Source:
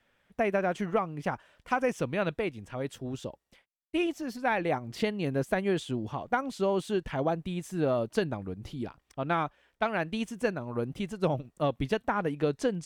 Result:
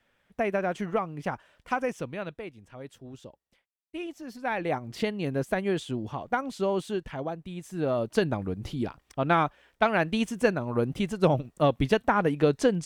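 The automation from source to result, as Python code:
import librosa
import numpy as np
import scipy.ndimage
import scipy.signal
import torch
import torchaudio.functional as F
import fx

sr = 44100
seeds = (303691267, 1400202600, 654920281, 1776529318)

y = fx.gain(x, sr, db=fx.line((1.73, 0.0), (2.38, -8.0), (4.0, -8.0), (4.73, 0.5), (6.78, 0.5), (7.38, -6.0), (8.36, 5.5)))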